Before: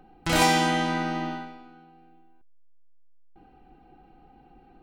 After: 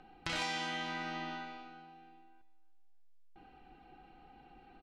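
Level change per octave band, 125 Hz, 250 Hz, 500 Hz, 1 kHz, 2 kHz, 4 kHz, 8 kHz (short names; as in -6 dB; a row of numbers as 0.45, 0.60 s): -18.0, -17.5, -17.5, -15.0, -11.0, -10.5, -17.5 dB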